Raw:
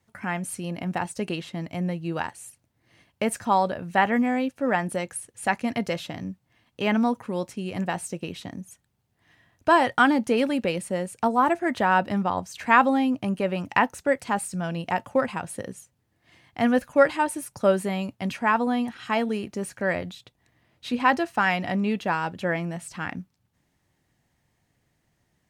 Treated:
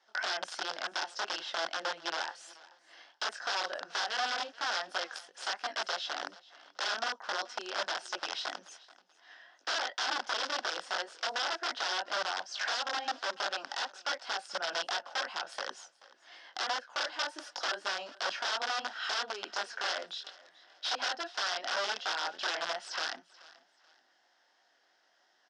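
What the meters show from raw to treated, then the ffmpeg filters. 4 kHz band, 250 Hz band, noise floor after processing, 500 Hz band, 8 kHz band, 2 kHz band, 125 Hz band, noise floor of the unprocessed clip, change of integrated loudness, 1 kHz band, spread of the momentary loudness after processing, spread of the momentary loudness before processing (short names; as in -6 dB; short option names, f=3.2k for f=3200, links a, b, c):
+5.0 dB, -29.0 dB, -70 dBFS, -15.0 dB, -4.0 dB, -6.5 dB, under -35 dB, -73 dBFS, -9.5 dB, -11.0 dB, 7 LU, 13 LU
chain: -filter_complex "[0:a]acompressor=threshold=-35dB:ratio=6,flanger=delay=19:depth=5.6:speed=2.8,aeval=exprs='(mod(59.6*val(0)+1,2)-1)/59.6':c=same,highpass=f=420:w=0.5412,highpass=f=420:w=1.3066,equalizer=f=450:t=q:w=4:g=-6,equalizer=f=750:t=q:w=4:g=4,equalizer=f=1.5k:t=q:w=4:g=9,equalizer=f=2.3k:t=q:w=4:g=-6,equalizer=f=3.3k:t=q:w=4:g=5,equalizer=f=5.2k:t=q:w=4:g=10,lowpass=f=5.7k:w=0.5412,lowpass=f=5.7k:w=1.3066,asplit=2[a][b];[b]aecho=0:1:432|864:0.0891|0.0276[c];[a][c]amix=inputs=2:normalize=0,volume=6.5dB"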